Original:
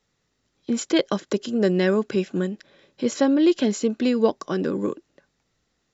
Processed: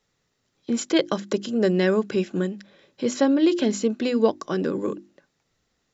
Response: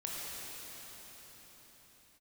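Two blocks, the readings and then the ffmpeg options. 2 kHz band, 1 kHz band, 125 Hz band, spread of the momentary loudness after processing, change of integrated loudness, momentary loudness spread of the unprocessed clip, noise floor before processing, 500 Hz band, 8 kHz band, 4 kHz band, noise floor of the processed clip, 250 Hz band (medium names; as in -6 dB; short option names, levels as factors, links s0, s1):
0.0 dB, 0.0 dB, -0.5 dB, 10 LU, -0.5 dB, 10 LU, -73 dBFS, 0.0 dB, no reading, 0.0 dB, -74 dBFS, -1.0 dB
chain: -af "bandreject=f=50:t=h:w=6,bandreject=f=100:t=h:w=6,bandreject=f=150:t=h:w=6,bandreject=f=200:t=h:w=6,bandreject=f=250:t=h:w=6,bandreject=f=300:t=h:w=6,bandreject=f=350:t=h:w=6"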